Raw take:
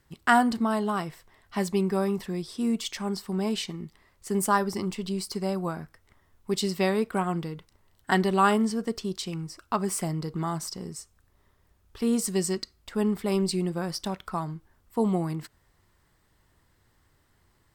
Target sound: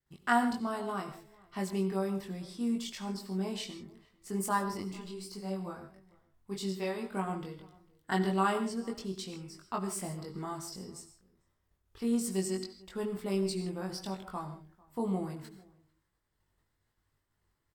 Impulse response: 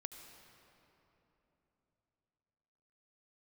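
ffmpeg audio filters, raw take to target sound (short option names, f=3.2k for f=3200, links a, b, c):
-filter_complex "[0:a]agate=range=-33dB:threshold=-59dB:ratio=3:detection=peak,asettb=1/sr,asplit=3[a][b][c];[a]atrim=end=4.824[d];[b]atrim=start=4.82:end=7.13,asetpts=PTS-STARTPTS,afade=t=in:d=0.004:c=qsin,afade=t=out:st=2.306:d=0.004:c=qsin,flanger=delay=19.5:depth=3.9:speed=1.7[e];[c]atrim=start=7.126[f];[d][e]acrossfade=d=0.004:c1=hsin:c2=qsin[g];[g][f]acrossfade=d=0.004:c1=qsin:c2=hsin,asplit=2[h][i];[i]adelay=21,volume=-2.5dB[j];[h][j]amix=inputs=2:normalize=0,asplit=2[k][l];[l]adelay=447,lowpass=f=1.6k:p=1,volume=-24dB[m];[k][m]amix=inputs=2:normalize=0[n];[1:a]atrim=start_sample=2205,afade=t=out:st=0.21:d=0.01,atrim=end_sample=9702[o];[n][o]afir=irnorm=-1:irlink=0,volume=-5dB"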